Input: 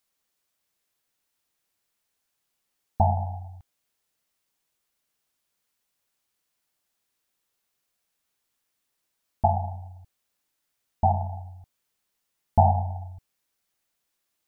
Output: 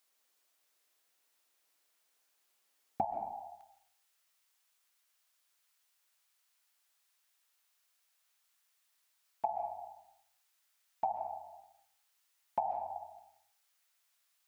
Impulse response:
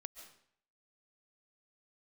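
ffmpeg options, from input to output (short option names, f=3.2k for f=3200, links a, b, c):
-filter_complex "[0:a]asetnsamples=n=441:p=0,asendcmd='3.05 highpass f 890',highpass=350,acompressor=threshold=-32dB:ratio=12[a];[1:a]atrim=start_sample=2205[b];[a][b]afir=irnorm=-1:irlink=0,volume=7.5dB"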